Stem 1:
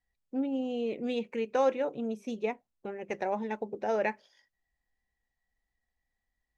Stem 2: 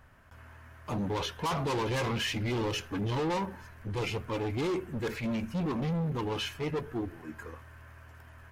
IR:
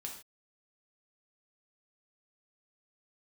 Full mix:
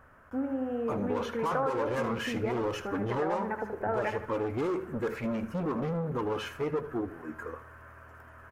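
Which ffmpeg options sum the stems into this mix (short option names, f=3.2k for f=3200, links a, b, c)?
-filter_complex "[0:a]lowpass=f=1.9k:w=0.5412,lowpass=f=1.9k:w=1.3066,volume=0.5dB,asplit=2[a][b];[b]volume=-8dB[c];[1:a]equalizer=f=250:t=o:w=1:g=4,equalizer=f=500:t=o:w=1:g=9,equalizer=f=4k:t=o:w=1:g=-6,volume=-3.5dB,asplit=2[d][e];[e]volume=-17dB[f];[c][f]amix=inputs=2:normalize=0,aecho=0:1:77|154|231|308|385:1|0.33|0.109|0.0359|0.0119[g];[a][d][g]amix=inputs=3:normalize=0,equalizer=f=1.3k:t=o:w=0.83:g=10.5,acompressor=threshold=-28dB:ratio=3"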